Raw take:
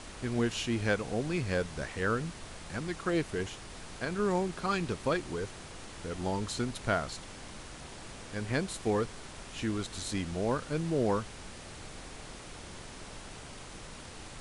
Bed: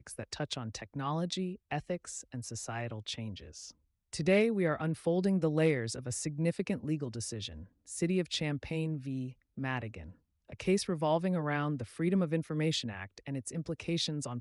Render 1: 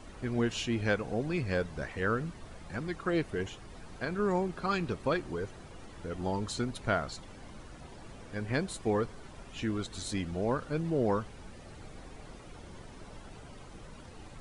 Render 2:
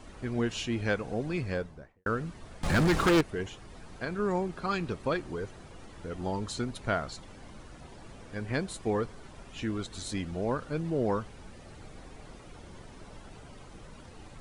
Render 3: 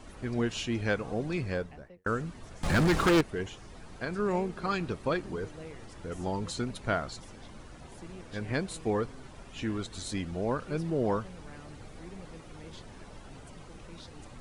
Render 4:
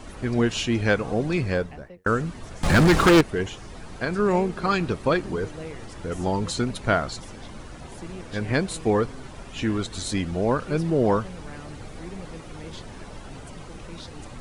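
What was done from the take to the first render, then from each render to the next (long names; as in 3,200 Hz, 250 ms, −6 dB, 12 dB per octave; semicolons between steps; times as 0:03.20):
broadband denoise 11 dB, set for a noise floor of −47 dBFS
0:01.39–0:02.06: fade out and dull; 0:02.63–0:03.21: leveller curve on the samples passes 5
mix in bed −18 dB
level +8 dB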